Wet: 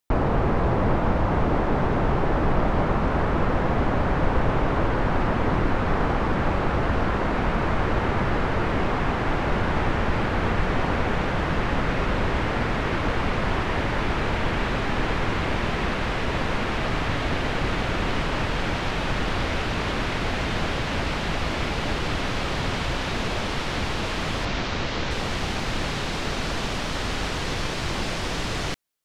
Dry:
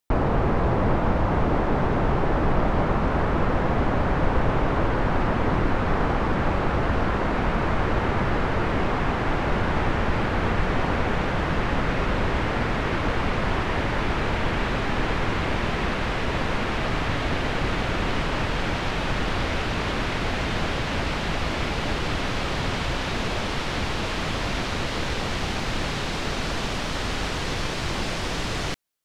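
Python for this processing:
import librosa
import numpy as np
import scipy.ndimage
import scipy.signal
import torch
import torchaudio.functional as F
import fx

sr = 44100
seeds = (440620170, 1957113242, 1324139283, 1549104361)

y = fx.lowpass(x, sr, hz=6600.0, slope=24, at=(24.45, 25.11))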